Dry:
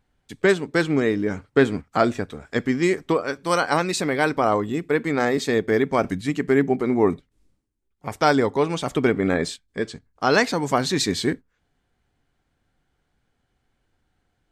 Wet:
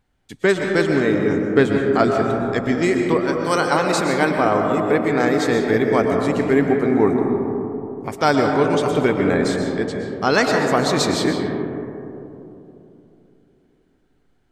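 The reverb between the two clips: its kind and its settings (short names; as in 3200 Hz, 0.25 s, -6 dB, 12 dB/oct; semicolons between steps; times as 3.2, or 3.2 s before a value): digital reverb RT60 3.2 s, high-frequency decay 0.25×, pre-delay 85 ms, DRR 2 dB; gain +1 dB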